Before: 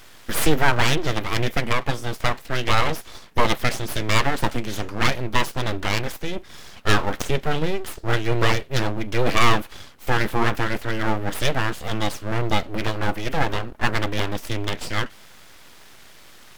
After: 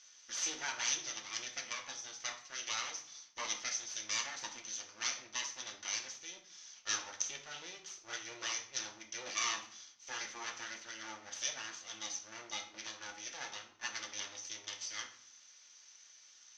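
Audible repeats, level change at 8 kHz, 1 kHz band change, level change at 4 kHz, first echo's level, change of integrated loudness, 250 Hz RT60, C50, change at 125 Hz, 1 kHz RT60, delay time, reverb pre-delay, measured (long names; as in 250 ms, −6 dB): no echo audible, −2.0 dB, −22.0 dB, −12.0 dB, no echo audible, −15.5 dB, 0.85 s, 10.0 dB, below −40 dB, 0.55 s, no echo audible, 3 ms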